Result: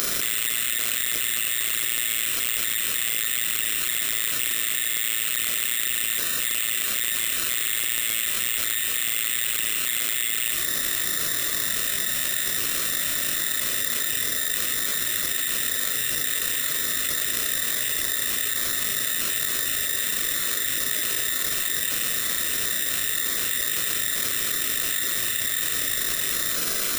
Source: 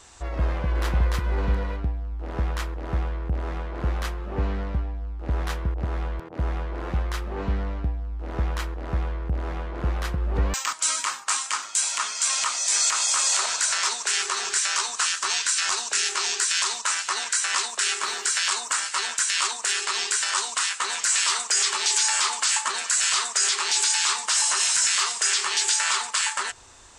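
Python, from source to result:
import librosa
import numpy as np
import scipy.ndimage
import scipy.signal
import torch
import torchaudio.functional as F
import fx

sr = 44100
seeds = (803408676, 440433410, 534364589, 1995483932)

p1 = np.sign(x) * np.sqrt(np.mean(np.square(x)))
p2 = fx.spec_gate(p1, sr, threshold_db=-15, keep='weak')
p3 = fx.low_shelf(p2, sr, hz=150.0, db=10.0)
p4 = p3 + 0.95 * np.pad(p3, (int(0.9 * sr / 1000.0), 0))[:len(p3)]
p5 = np.clip(p4, -10.0 ** (-25.5 / 20.0), 10.0 ** (-25.5 / 20.0))
p6 = p4 + (p5 * librosa.db_to_amplitude(-4.0))
p7 = fx.room_flutter(p6, sr, wall_m=6.6, rt60_s=0.22)
p8 = fx.freq_invert(p7, sr, carrier_hz=3700)
p9 = (np.kron(p8[::8], np.eye(8)[0]) * 8)[:len(p8)]
p10 = fx.env_flatten(p9, sr, amount_pct=100)
y = p10 * librosa.db_to_amplitude(-13.0)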